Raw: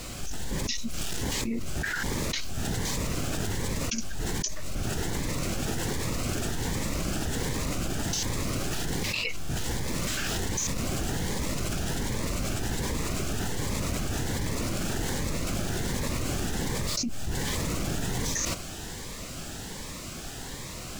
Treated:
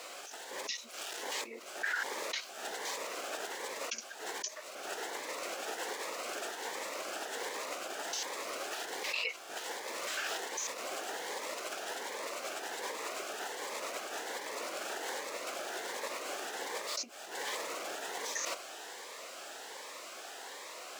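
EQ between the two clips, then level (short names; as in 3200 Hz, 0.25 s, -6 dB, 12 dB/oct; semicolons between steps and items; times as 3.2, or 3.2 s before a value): HPF 480 Hz 24 dB/oct; high shelf 3600 Hz -9 dB; -1.0 dB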